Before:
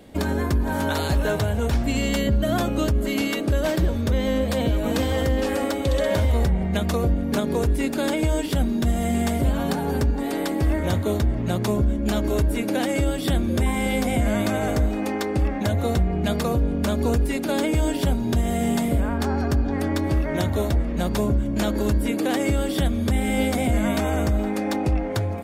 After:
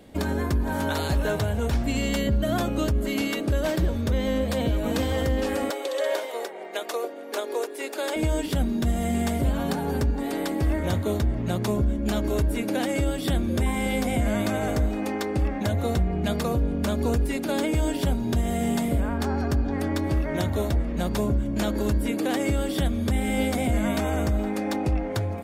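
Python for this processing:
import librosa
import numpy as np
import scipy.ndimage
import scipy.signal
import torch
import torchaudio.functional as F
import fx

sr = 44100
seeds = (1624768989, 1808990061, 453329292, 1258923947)

y = fx.steep_highpass(x, sr, hz=360.0, slope=36, at=(5.7, 8.16))
y = y * 10.0 ** (-2.5 / 20.0)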